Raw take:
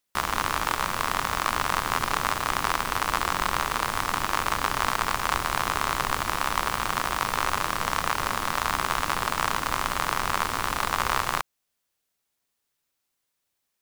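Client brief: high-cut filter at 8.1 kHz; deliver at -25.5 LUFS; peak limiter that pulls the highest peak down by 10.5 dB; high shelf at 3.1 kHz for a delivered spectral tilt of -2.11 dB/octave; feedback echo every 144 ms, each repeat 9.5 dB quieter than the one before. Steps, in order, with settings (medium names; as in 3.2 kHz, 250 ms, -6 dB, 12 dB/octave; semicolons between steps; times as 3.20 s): low-pass 8.1 kHz; treble shelf 3.1 kHz +4 dB; peak limiter -14.5 dBFS; feedback delay 144 ms, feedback 33%, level -9.5 dB; trim +5.5 dB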